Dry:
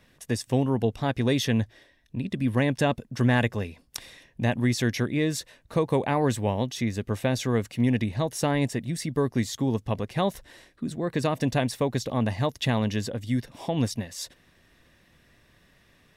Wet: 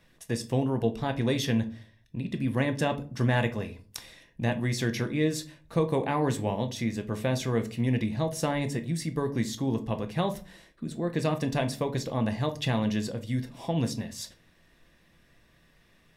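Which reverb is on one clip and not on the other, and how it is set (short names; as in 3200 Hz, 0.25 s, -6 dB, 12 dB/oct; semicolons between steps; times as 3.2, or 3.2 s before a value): shoebox room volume 210 m³, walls furnished, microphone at 0.73 m; gain -3.5 dB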